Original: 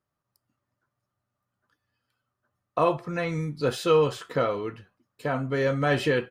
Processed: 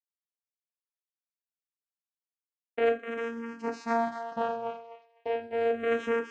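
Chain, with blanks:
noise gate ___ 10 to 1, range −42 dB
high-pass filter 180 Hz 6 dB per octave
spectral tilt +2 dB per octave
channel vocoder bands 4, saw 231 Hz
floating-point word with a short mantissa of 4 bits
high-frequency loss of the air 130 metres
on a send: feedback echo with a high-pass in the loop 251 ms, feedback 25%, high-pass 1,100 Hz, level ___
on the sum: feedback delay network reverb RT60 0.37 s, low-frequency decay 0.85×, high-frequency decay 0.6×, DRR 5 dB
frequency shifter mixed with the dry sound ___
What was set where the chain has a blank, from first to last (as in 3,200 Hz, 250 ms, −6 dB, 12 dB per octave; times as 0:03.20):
−40 dBFS, −6.5 dB, −0.35 Hz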